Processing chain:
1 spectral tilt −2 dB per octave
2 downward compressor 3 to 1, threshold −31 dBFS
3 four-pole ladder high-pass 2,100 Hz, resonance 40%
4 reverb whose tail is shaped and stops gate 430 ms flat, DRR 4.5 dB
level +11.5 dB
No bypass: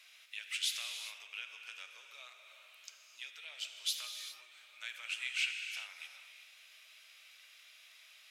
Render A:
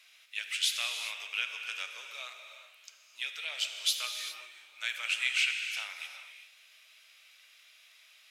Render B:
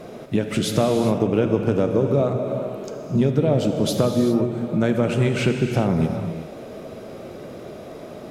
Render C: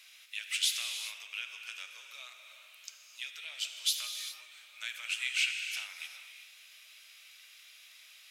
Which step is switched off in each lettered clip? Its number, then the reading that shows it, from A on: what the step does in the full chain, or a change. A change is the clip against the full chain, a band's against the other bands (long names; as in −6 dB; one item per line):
2, average gain reduction 5.0 dB
3, change in crest factor −6.5 dB
1, change in integrated loudness +5.0 LU